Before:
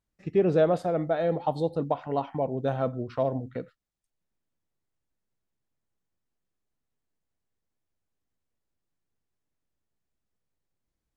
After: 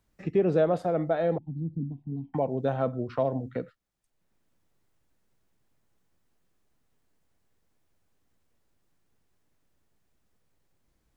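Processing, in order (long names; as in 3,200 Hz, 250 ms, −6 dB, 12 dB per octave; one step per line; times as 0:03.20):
0:01.38–0:02.34: inverse Chebyshev low-pass filter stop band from 510 Hz, stop band 40 dB
multiband upward and downward compressor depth 40%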